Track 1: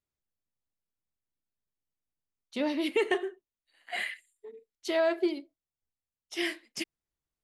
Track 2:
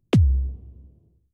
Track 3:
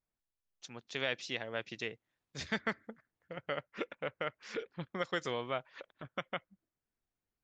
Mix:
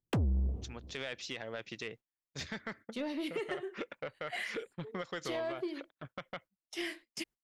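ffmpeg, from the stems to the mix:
ffmpeg -i stem1.wav -i stem2.wav -i stem3.wav -filter_complex "[0:a]adelay=400,volume=-3.5dB[link_01];[1:a]equalizer=frequency=700:width_type=o:width=2.9:gain=11,acompressor=threshold=-19dB:ratio=2,volume=-1dB[link_02];[2:a]alimiter=level_in=1.5dB:limit=-24dB:level=0:latency=1:release=59,volume=-1.5dB,volume=1.5dB,asplit=2[link_03][link_04];[link_04]apad=whole_len=58806[link_05];[link_02][link_05]sidechaincompress=threshold=-50dB:ratio=8:attack=40:release=194[link_06];[link_01][link_03]amix=inputs=2:normalize=0,acompressor=threshold=-32dB:ratio=6,volume=0dB[link_07];[link_06][link_07]amix=inputs=2:normalize=0,agate=range=-22dB:threshold=-51dB:ratio=16:detection=peak,asoftclip=type=tanh:threshold=-27.5dB" out.wav

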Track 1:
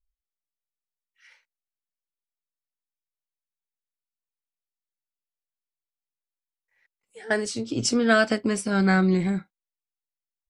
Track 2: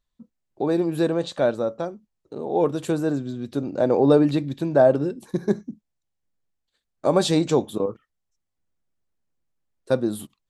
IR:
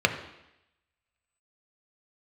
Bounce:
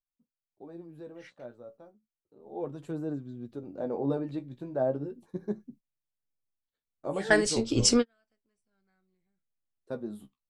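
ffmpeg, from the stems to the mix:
-filter_complex "[0:a]asubboost=boost=6.5:cutoff=65,volume=2.5dB[link_01];[1:a]highshelf=frequency=2200:gain=-11,flanger=delay=6.6:depth=9.7:regen=31:speed=0.33:shape=sinusoidal,volume=-9dB,afade=type=in:start_time=2.44:duration=0.24:silence=0.298538,asplit=2[link_02][link_03];[link_03]apad=whole_len=462660[link_04];[link_01][link_04]sidechaingate=range=-55dB:threshold=-53dB:ratio=16:detection=peak[link_05];[link_05][link_02]amix=inputs=2:normalize=0"

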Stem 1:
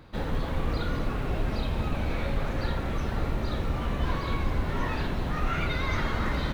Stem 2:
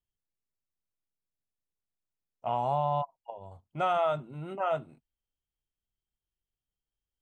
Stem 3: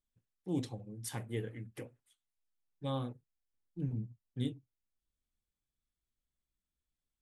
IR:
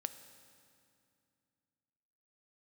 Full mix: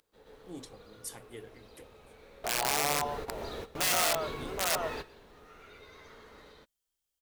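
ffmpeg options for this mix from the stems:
-filter_complex "[0:a]equalizer=frequency=440:width_type=o:width=0.24:gain=13.5,volume=-7.5dB,asplit=3[link_01][link_02][link_03];[link_02]volume=-20.5dB[link_04];[link_03]volume=-17.5dB[link_05];[1:a]volume=1.5dB,asplit=3[link_06][link_07][link_08];[link_07]volume=-8.5dB[link_09];[2:a]volume=-5.5dB[link_10];[link_08]apad=whole_len=288162[link_11];[link_01][link_11]sidechaingate=range=-33dB:threshold=-55dB:ratio=16:detection=peak[link_12];[link_12][link_06]amix=inputs=2:normalize=0,aeval=exprs='(mod(10.6*val(0)+1,2)-1)/10.6':channel_layout=same,alimiter=level_in=1.5dB:limit=-24dB:level=0:latency=1:release=109,volume=-1.5dB,volume=0dB[link_13];[3:a]atrim=start_sample=2205[link_14];[link_04][link_14]afir=irnorm=-1:irlink=0[link_15];[link_05][link_09]amix=inputs=2:normalize=0,aecho=0:1:123:1[link_16];[link_10][link_13][link_15][link_16]amix=inputs=4:normalize=0,bass=frequency=250:gain=-11,treble=frequency=4000:gain=8"

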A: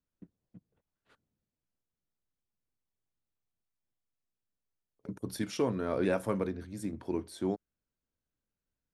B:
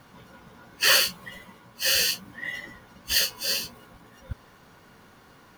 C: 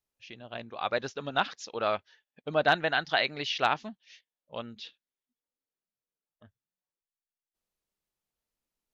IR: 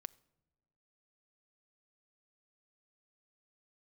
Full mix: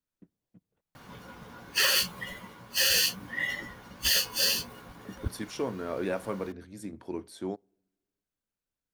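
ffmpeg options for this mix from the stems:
-filter_complex "[0:a]lowshelf=frequency=240:gain=-6,volume=-2.5dB,asplit=2[link_01][link_02];[link_02]volume=-6.5dB[link_03];[1:a]adelay=950,volume=2.5dB[link_04];[3:a]atrim=start_sample=2205[link_05];[link_03][link_05]afir=irnorm=-1:irlink=0[link_06];[link_01][link_04][link_06]amix=inputs=3:normalize=0,alimiter=limit=-14dB:level=0:latency=1:release=67"

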